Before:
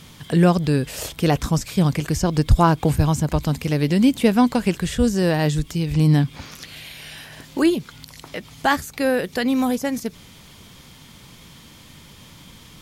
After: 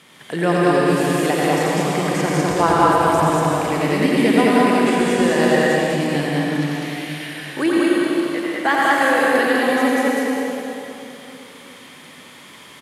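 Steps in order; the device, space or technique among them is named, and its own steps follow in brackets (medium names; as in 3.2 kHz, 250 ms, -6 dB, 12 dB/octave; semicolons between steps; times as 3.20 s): station announcement (band-pass 310–4500 Hz; peaking EQ 1.9 kHz +4.5 dB 0.54 oct; loudspeakers at several distances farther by 30 m -4 dB, 68 m -2 dB; reverberation RT60 3.1 s, pre-delay 102 ms, DRR -3.5 dB); resonant high shelf 7.6 kHz +13 dB, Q 1.5; trim -1 dB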